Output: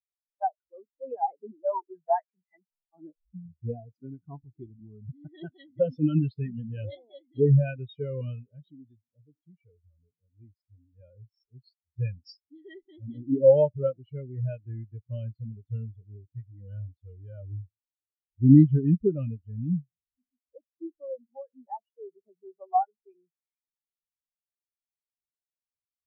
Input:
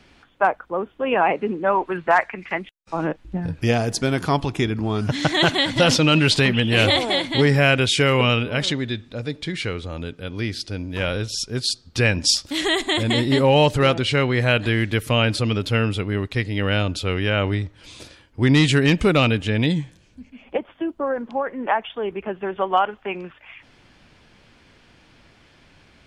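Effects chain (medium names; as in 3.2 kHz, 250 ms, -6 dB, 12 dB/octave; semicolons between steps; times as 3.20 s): jump at every zero crossing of -29 dBFS; spectral contrast expander 4:1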